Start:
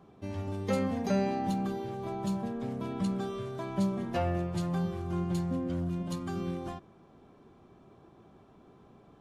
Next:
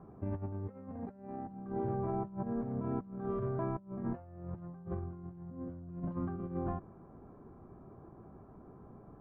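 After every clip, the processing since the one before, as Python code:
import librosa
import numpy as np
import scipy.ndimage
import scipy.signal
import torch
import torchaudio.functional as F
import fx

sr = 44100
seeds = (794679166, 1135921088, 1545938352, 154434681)

y = scipy.signal.sosfilt(scipy.signal.butter(4, 1500.0, 'lowpass', fs=sr, output='sos'), x)
y = fx.low_shelf(y, sr, hz=130.0, db=7.5)
y = fx.over_compress(y, sr, threshold_db=-35.0, ratio=-0.5)
y = F.gain(torch.from_numpy(y), -3.5).numpy()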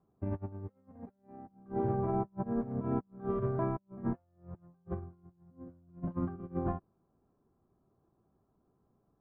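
y = fx.upward_expand(x, sr, threshold_db=-50.0, expansion=2.5)
y = F.gain(torch.from_numpy(y), 5.0).numpy()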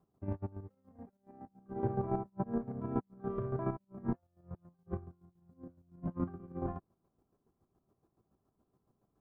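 y = fx.chopper(x, sr, hz=7.1, depth_pct=60, duty_pct=30)
y = F.gain(torch.from_numpy(y), 1.0).numpy()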